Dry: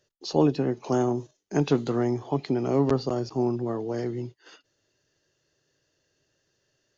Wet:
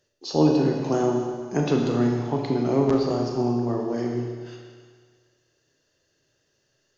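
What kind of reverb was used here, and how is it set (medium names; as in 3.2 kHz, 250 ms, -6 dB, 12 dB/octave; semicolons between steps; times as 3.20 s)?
Schroeder reverb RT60 1.7 s, combs from 26 ms, DRR 0.5 dB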